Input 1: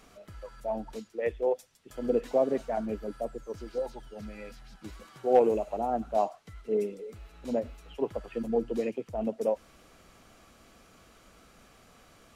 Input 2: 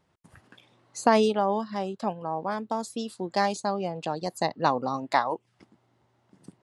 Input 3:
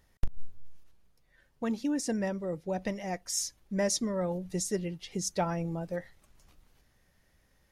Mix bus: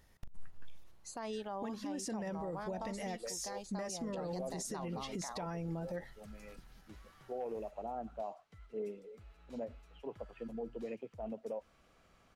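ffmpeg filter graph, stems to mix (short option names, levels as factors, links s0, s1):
-filter_complex "[0:a]highshelf=f=5800:g=-10,adelay=2050,volume=0.376[s0];[1:a]adelay=100,volume=0.266[s1];[2:a]acompressor=threshold=0.0178:ratio=10,volume=1.12,asplit=2[s2][s3];[s3]apad=whole_len=635357[s4];[s0][s4]sidechaincompress=threshold=0.00891:ratio=8:attack=16:release=179[s5];[s5][s1]amix=inputs=2:normalize=0,equalizer=f=310:t=o:w=1.1:g=-4,alimiter=level_in=1.41:limit=0.0631:level=0:latency=1:release=418,volume=0.708,volume=1[s6];[s2][s6]amix=inputs=2:normalize=0,alimiter=level_in=2.51:limit=0.0631:level=0:latency=1:release=46,volume=0.398"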